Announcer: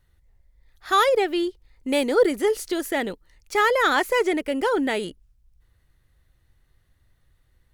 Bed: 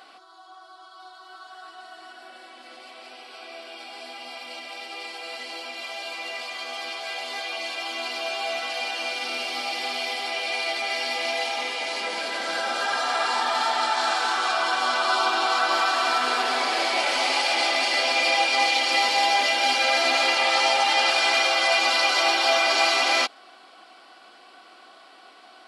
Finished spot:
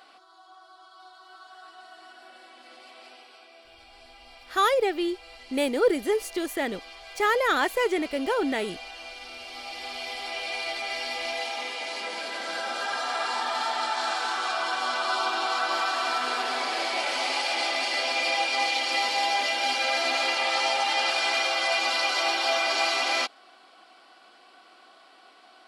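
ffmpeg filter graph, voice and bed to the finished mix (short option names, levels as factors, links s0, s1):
-filter_complex "[0:a]adelay=3650,volume=0.668[s0];[1:a]volume=1.41,afade=t=out:st=3.05:d=0.45:silence=0.421697,afade=t=in:st=9.39:d=0.99:silence=0.421697[s1];[s0][s1]amix=inputs=2:normalize=0"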